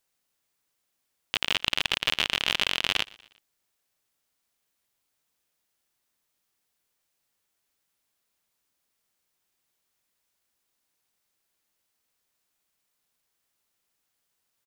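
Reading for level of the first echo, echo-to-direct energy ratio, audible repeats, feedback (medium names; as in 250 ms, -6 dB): -24.0 dB, -23.0 dB, 2, 51%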